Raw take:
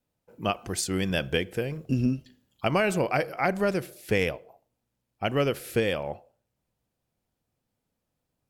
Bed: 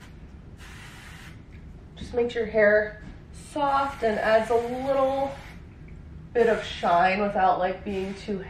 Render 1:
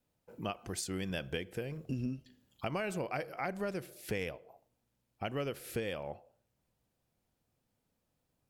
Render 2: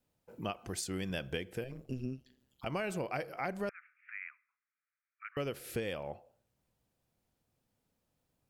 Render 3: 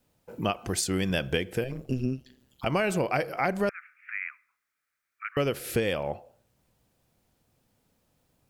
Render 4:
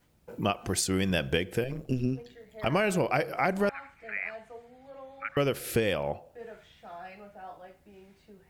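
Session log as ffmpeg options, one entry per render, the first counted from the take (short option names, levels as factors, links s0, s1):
-af "acompressor=threshold=0.00708:ratio=2"
-filter_complex "[0:a]asettb=1/sr,asplit=3[s0][s1][s2];[s0]atrim=end=1.644[s3];[s1]atrim=start=1.64:end=2.67,asetpts=PTS-STARTPTS,afade=t=in:d=0.004:c=qsin,afade=t=out:st=1.026:d=0.004:c=qsin,tremolo=f=130:d=0.857[s4];[s2]atrim=start=2.666[s5];[s3][s4]acrossfade=d=0.004:c1=hsin:c2=qsin[s6];[s6][s5]acrossfade=d=0.004:c1=qsin:c2=hsin,asettb=1/sr,asplit=3[s7][s8][s9];[s7]atrim=end=3.694[s10];[s8]atrim=start=3.69:end=5.37,asetpts=PTS-STARTPTS,afade=t=in:d=0.004:c=qsin,afade=t=out:st=1.676:d=0.004:c=qsin,asuperpass=centerf=1700:order=12:qfactor=1.4[s11];[s9]atrim=start=5.366[s12];[s10][s11]acrossfade=d=0.004:c1=hsin:c2=qsin[s13];[s13][s12]acrossfade=d=0.004:c1=qsin:c2=hsin"
-af "volume=3.16"
-filter_complex "[1:a]volume=0.0668[s0];[0:a][s0]amix=inputs=2:normalize=0"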